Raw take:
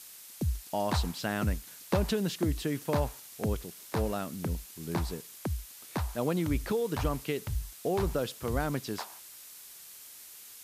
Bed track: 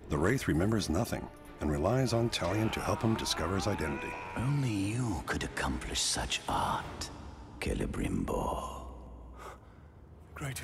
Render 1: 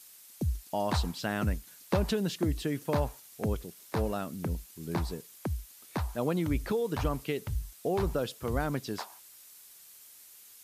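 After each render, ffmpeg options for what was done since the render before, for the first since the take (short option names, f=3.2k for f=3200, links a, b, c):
-af "afftdn=nr=6:nf=-50"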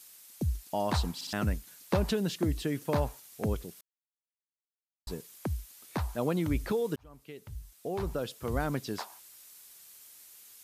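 -filter_complex "[0:a]asplit=7[a][b][c][d][e][f][g];[a]atrim=end=1.212[h];[b]atrim=start=1.148:end=1.212[i];[c]atrim=start=1.148:end=1.212[j];[d]atrim=start=1.328:end=3.81,asetpts=PTS-STARTPTS,afade=t=out:st=2.478:d=0.004:c=hsin[k];[e]atrim=start=3.81:end=5.07,asetpts=PTS-STARTPTS,volume=0[l];[f]atrim=start=5.07:end=6.96,asetpts=PTS-STARTPTS,afade=t=in:d=0.004:c=hsin,afade=t=out:st=1.886:d=0.004:c=hsin[m];[g]atrim=start=6.96,asetpts=PTS-STARTPTS,afade=t=in:d=1.71[n];[h][i]acrossfade=d=0.004:c1=hsin:c2=hsin[o];[o][j]acrossfade=d=0.004:c1=hsin:c2=hsin[p];[k][l][m][n]concat=n=4:v=0:a=1[q];[p][q]acrossfade=d=0.004:c1=hsin:c2=hsin"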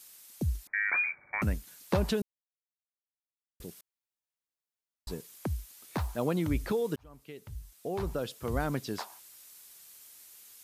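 -filter_complex "[0:a]asettb=1/sr,asplit=3[a][b][c];[a]atrim=end=0.674[d];[b]atrim=start=0.67:end=1.42,asetpts=PTS-STARTPTS,afade=t=in:d=0.004:c=qsin,afade=t=out:st=0.746:d=0.004:c=qsin,lowpass=f=2.1k:t=q:w=0.5098,lowpass=f=2.1k:t=q:w=0.6013,lowpass=f=2.1k:t=q:w=0.9,lowpass=f=2.1k:t=q:w=2.563,afreqshift=-2500[e];[c]atrim=start=1.416[f];[d][e]acrossfade=d=0.004:c1=hsin:c2=qsin[g];[g][f]acrossfade=d=0.004:c1=qsin:c2=hsin,asettb=1/sr,asplit=3[h][i][j];[h]atrim=end=5.604[k];[i]atrim=start=5.6:end=6.22,asetpts=PTS-STARTPTS,afade=t=in:d=0.004:c=qsin,afade=t=out:st=0.616:d=0.004:c=qsin,acrusher=bits=8:mode=log:mix=0:aa=0.000001[l];[j]atrim=start=6.216[m];[k][l]acrossfade=d=0.004:c1=hsin:c2=qsin[n];[n][m]acrossfade=d=0.004:c1=qsin:c2=hsin,asplit=3[o][p][q];[o]atrim=end=2.22,asetpts=PTS-STARTPTS,afade=t=out:st=2.216:d=0.004:c=hsin[r];[p]atrim=start=2.22:end=3.6,asetpts=PTS-STARTPTS,volume=0[s];[q]atrim=start=3.6,asetpts=PTS-STARTPTS,afade=t=in:d=0.004:c=hsin[t];[r][s][t]concat=n=3:v=0:a=1"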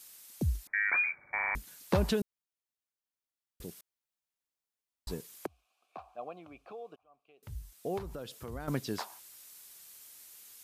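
-filter_complex "[0:a]asettb=1/sr,asplit=3[a][b][c];[a]atrim=end=5.464[d];[b]atrim=start=5.46:end=7.43,asetpts=PTS-STARTPTS,afade=t=in:d=0.004:c=qsin,afade=t=out:st=1.966:d=0.004:c=qsin,asplit=3[e][f][g];[e]bandpass=f=730:t=q:w=8,volume=0dB[h];[f]bandpass=f=1.09k:t=q:w=8,volume=-6dB[i];[g]bandpass=f=2.44k:t=q:w=8,volume=-9dB[j];[h][i][j]amix=inputs=3:normalize=0[k];[c]atrim=start=7.426[l];[d][k]acrossfade=d=0.004:c1=hsin:c2=qsin[m];[m][l]acrossfade=d=0.004:c1=qsin:c2=hsin,asettb=1/sr,asplit=3[n][o][p];[n]atrim=end=7.984[q];[o]atrim=start=7.98:end=8.68,asetpts=PTS-STARTPTS,afade=t=in:d=0.004:c=qsin,afade=t=out:st=0.696:d=0.004:c=qsin,acompressor=threshold=-42dB:ratio=2.5:attack=3.2:release=140:knee=1:detection=peak[r];[p]atrim=start=8.676[s];[q][r]acrossfade=d=0.004:c1=hsin:c2=qsin[t];[t][s]acrossfade=d=0.004:c1=qsin:c2=hsin,asplit=6[u][v][w][x][y][z];[u]atrim=end=1.392[aa];[v]atrim=start=1.348:end=1.392[ab];[w]atrim=start=1.348:end=1.392[ac];[x]atrim=start=1.348:end=1.392[ad];[y]atrim=start=1.348:end=1.392[ae];[z]atrim=start=1.548[af];[aa][ab]acrossfade=d=0.004:c1=hsin:c2=hsin[ag];[ag][ac]acrossfade=d=0.004:c1=hsin:c2=hsin[ah];[ah][ad]acrossfade=d=0.004:c1=hsin:c2=hsin[ai];[ai][ae]acrossfade=d=0.004:c1=hsin:c2=hsin[aj];[aj][af]acrossfade=d=0.004:c1=hsin:c2=hsin"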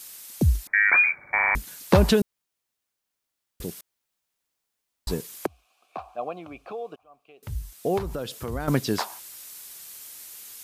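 -af "volume=10.5dB"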